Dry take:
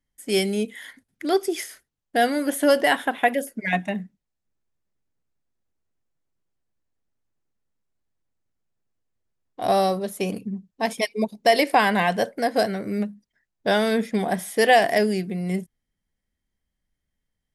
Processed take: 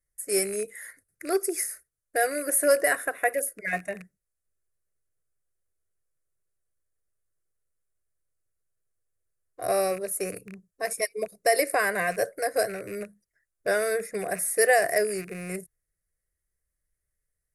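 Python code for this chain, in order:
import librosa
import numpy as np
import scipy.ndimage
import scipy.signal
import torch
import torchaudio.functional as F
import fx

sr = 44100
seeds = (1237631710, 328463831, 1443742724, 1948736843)

y = fx.rattle_buzz(x, sr, strikes_db=-32.0, level_db=-25.0)
y = fx.peak_eq(y, sr, hz=10000.0, db=12.5, octaves=0.76)
y = fx.fixed_phaser(y, sr, hz=880.0, stages=6)
y = y * 10.0 ** (-2.0 / 20.0)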